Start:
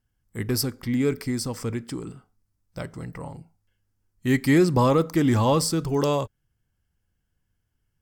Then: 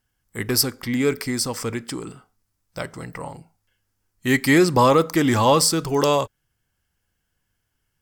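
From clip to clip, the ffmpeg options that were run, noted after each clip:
-af "lowshelf=f=360:g=-10.5,volume=8dB"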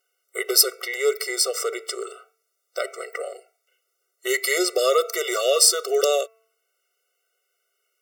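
-filter_complex "[0:a]bandreject=f=223.6:t=h:w=4,bandreject=f=447.2:t=h:w=4,bandreject=f=670.8:t=h:w=4,bandreject=f=894.4:t=h:w=4,bandreject=f=1.118k:t=h:w=4,bandreject=f=1.3416k:t=h:w=4,bandreject=f=1.5652k:t=h:w=4,bandreject=f=1.7888k:t=h:w=4,bandreject=f=2.0124k:t=h:w=4,bandreject=f=2.236k:t=h:w=4,bandreject=f=2.4596k:t=h:w=4,bandreject=f=2.6832k:t=h:w=4,acrossover=split=250|3000[a][b][c];[b]acompressor=threshold=-30dB:ratio=2[d];[a][d][c]amix=inputs=3:normalize=0,afftfilt=real='re*eq(mod(floor(b*sr/1024/380),2),1)':imag='im*eq(mod(floor(b*sr/1024/380),2),1)':win_size=1024:overlap=0.75,volume=7dB"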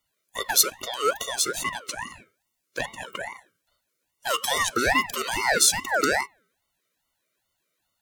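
-af "aeval=exprs='val(0)*sin(2*PI*1200*n/s+1200*0.3/2.4*sin(2*PI*2.4*n/s))':c=same"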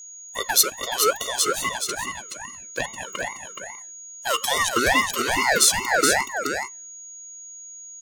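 -filter_complex "[0:a]aeval=exprs='val(0)+0.00891*sin(2*PI*6700*n/s)':c=same,asplit=2[a][b];[b]asoftclip=type=hard:threshold=-12.5dB,volume=-11dB[c];[a][c]amix=inputs=2:normalize=0,aecho=1:1:424:0.501"

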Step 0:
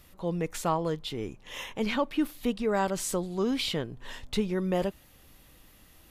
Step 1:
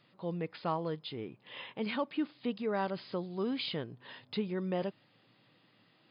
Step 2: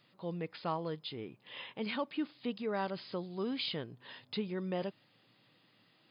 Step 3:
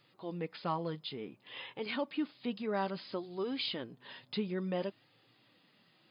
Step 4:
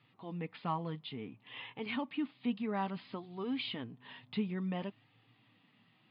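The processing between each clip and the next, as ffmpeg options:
-af "afftfilt=real='re*between(b*sr/4096,100,5100)':imag='im*between(b*sr/4096,100,5100)':win_size=4096:overlap=0.75,volume=-6dB"
-af "highshelf=f=3.7k:g=6.5,volume=-2.5dB"
-af "flanger=delay=2.3:depth=3.2:regen=-45:speed=0.58:shape=sinusoidal,volume=4.5dB"
-af "highpass=100,equalizer=f=110:t=q:w=4:g=9,equalizer=f=250:t=q:w=4:g=4,equalizer=f=360:t=q:w=4:g=-8,equalizer=f=550:t=q:w=4:g=-10,equalizer=f=1.5k:t=q:w=4:g=-6,lowpass=f=3.2k:w=0.5412,lowpass=f=3.2k:w=1.3066,volume=1dB"

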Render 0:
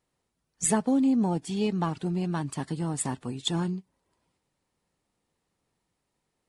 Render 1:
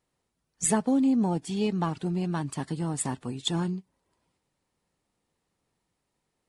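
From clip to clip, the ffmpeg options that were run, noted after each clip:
-af anull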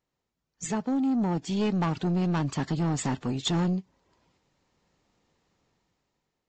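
-af "dynaudnorm=f=510:g=5:m=13dB,aresample=16000,asoftclip=type=tanh:threshold=-17.5dB,aresample=44100,volume=-4dB"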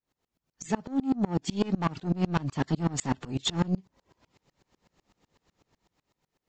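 -filter_complex "[0:a]asplit=2[a][b];[b]acompressor=threshold=-36dB:ratio=6,volume=0.5dB[c];[a][c]amix=inputs=2:normalize=0,aeval=exprs='val(0)*pow(10,-27*if(lt(mod(-8*n/s,1),2*abs(-8)/1000),1-mod(-8*n/s,1)/(2*abs(-8)/1000),(mod(-8*n/s,1)-2*abs(-8)/1000)/(1-2*abs(-8)/1000))/20)':c=same,volume=3.5dB"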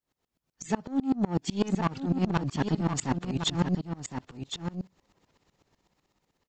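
-af "aecho=1:1:1062:0.422"

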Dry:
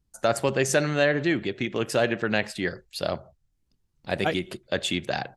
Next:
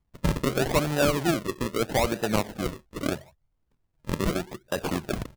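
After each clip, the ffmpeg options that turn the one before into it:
-af "acrusher=samples=40:mix=1:aa=0.000001:lfo=1:lforange=40:lforate=0.79,volume=-1dB"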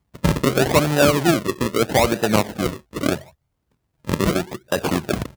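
-af "highpass=64,volume=7.5dB"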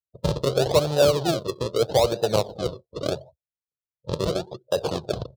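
-af "equalizer=f=125:t=o:w=1:g=6,equalizer=f=250:t=o:w=1:g=-11,equalizer=f=500:t=o:w=1:g=11,equalizer=f=2k:t=o:w=1:g=-10,equalizer=f=4k:t=o:w=1:g=9,afftdn=nr=34:nf=-37,volume=-7.5dB"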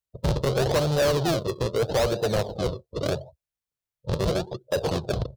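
-af "lowshelf=f=78:g=11,asoftclip=type=tanh:threshold=-21.5dB,volume=3dB"

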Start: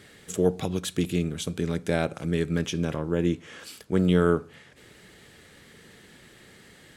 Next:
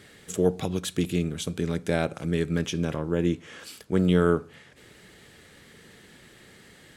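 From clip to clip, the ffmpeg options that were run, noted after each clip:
-af anull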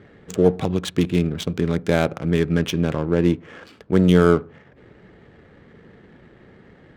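-af "adynamicsmooth=sensitivity=7:basefreq=1.1k,volume=6.5dB"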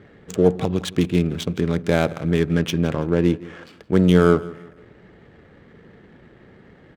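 -af "aecho=1:1:166|332|498:0.106|0.0381|0.0137"

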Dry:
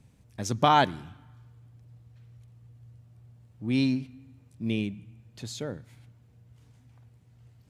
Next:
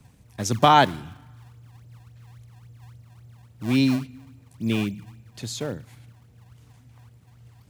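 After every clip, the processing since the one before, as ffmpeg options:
-filter_complex "[0:a]highshelf=f=9.9k:g=5.5,acrossover=split=200|1000[a][b][c];[a]acrusher=samples=29:mix=1:aa=0.000001:lfo=1:lforange=46.4:lforate=3.6[d];[d][b][c]amix=inputs=3:normalize=0,volume=5dB"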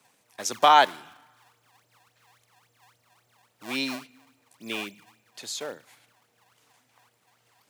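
-af "highpass=560"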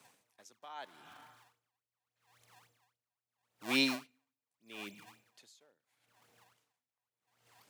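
-af "aeval=exprs='val(0)*pow(10,-34*(0.5-0.5*cos(2*PI*0.79*n/s))/20)':c=same"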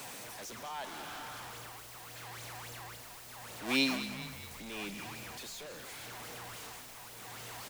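-filter_complex "[0:a]aeval=exprs='val(0)+0.5*0.00944*sgn(val(0))':c=same,asplit=2[a][b];[b]asplit=6[c][d][e][f][g][h];[c]adelay=207,afreqshift=-59,volume=-12dB[i];[d]adelay=414,afreqshift=-118,volume=-16.9dB[j];[e]adelay=621,afreqshift=-177,volume=-21.8dB[k];[f]adelay=828,afreqshift=-236,volume=-26.6dB[l];[g]adelay=1035,afreqshift=-295,volume=-31.5dB[m];[h]adelay=1242,afreqshift=-354,volume=-36.4dB[n];[i][j][k][l][m][n]amix=inputs=6:normalize=0[o];[a][o]amix=inputs=2:normalize=0"

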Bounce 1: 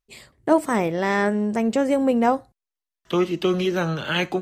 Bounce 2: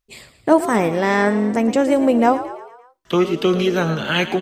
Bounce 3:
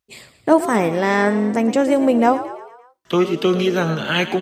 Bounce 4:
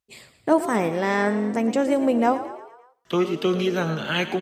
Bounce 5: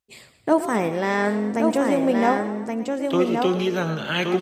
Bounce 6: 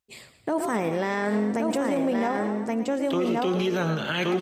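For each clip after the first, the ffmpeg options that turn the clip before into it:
-filter_complex "[0:a]asplit=6[a][b][c][d][e][f];[b]adelay=113,afreqshift=50,volume=-13dB[g];[c]adelay=226,afreqshift=100,volume=-18.7dB[h];[d]adelay=339,afreqshift=150,volume=-24.4dB[i];[e]adelay=452,afreqshift=200,volume=-30dB[j];[f]adelay=565,afreqshift=250,volume=-35.7dB[k];[a][g][h][i][j][k]amix=inputs=6:normalize=0,volume=4dB"
-af "highpass=80"
-af "aecho=1:1:93|186|279:0.0944|0.0444|0.0209,volume=-5dB"
-af "aecho=1:1:1123:0.596"
-af "alimiter=limit=-17dB:level=0:latency=1:release=36"

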